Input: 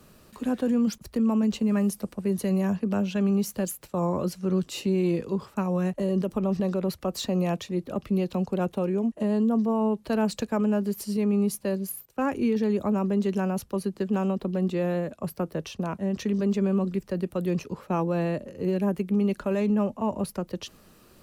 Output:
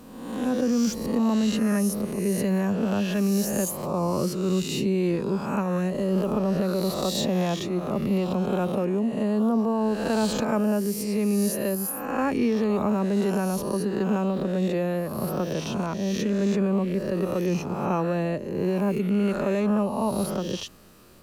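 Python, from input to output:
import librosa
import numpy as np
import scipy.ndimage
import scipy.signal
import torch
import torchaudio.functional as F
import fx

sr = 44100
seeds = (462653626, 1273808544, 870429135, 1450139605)

y = fx.spec_swells(x, sr, rise_s=1.13)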